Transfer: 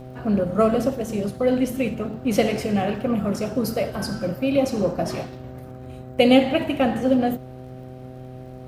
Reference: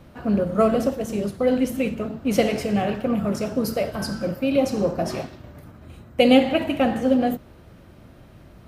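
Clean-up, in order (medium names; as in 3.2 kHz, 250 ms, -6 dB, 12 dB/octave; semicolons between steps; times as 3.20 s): de-click; de-hum 128.1 Hz, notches 6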